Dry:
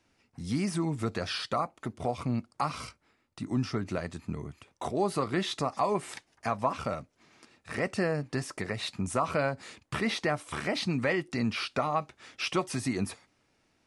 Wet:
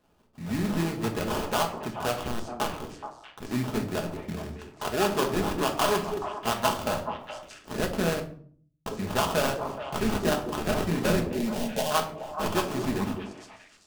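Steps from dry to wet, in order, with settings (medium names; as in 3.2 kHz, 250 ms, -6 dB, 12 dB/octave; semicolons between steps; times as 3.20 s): 2.22–3.49 s: cycle switcher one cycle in 2, muted; peaking EQ 140 Hz -5.5 dB 2.1 oct; sample-rate reducer 2.1 kHz, jitter 20%; 11.29–11.91 s: static phaser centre 330 Hz, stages 6; repeats whose band climbs or falls 213 ms, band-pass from 330 Hz, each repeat 1.4 oct, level -4 dB; 8.20–8.86 s: mute; simulated room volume 550 m³, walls furnished, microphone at 1.4 m; trim +2.5 dB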